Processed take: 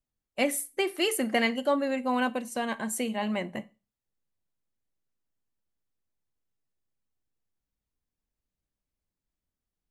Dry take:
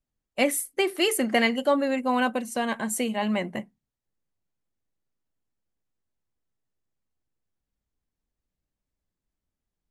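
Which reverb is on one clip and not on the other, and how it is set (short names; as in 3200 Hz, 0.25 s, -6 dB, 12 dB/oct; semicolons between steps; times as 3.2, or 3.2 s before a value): Schroeder reverb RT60 0.31 s, combs from 28 ms, DRR 18.5 dB; gain -3.5 dB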